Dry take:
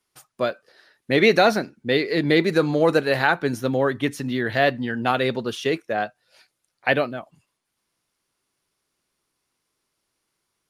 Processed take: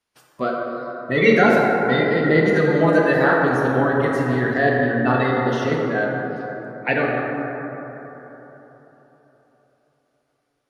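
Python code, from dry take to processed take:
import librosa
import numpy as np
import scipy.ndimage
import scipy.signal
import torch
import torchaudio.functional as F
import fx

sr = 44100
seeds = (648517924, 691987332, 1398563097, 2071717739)

y = fx.spec_quant(x, sr, step_db=30)
y = fx.high_shelf(y, sr, hz=5900.0, db=-10.5)
y = fx.rev_plate(y, sr, seeds[0], rt60_s=3.9, hf_ratio=0.3, predelay_ms=0, drr_db=-3.0)
y = y * 10.0 ** (-1.0 / 20.0)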